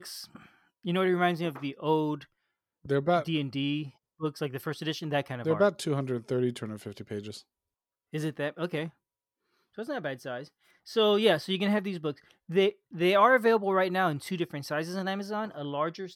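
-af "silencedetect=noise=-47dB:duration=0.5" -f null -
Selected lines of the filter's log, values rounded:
silence_start: 2.24
silence_end: 2.85 | silence_duration: 0.61
silence_start: 7.41
silence_end: 8.13 | silence_duration: 0.72
silence_start: 8.90
silence_end: 9.78 | silence_duration: 0.88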